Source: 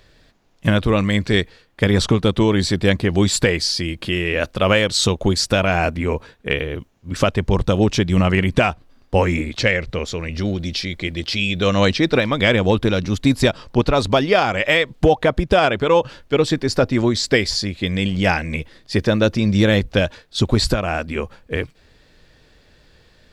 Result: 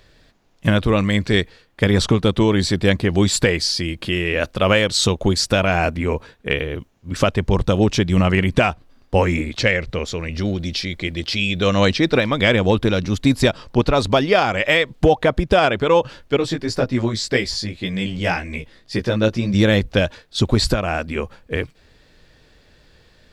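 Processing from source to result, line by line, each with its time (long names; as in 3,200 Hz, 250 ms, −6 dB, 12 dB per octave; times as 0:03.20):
0:16.37–0:19.54: chorus effect 1.9 Hz, delay 15.5 ms, depth 3 ms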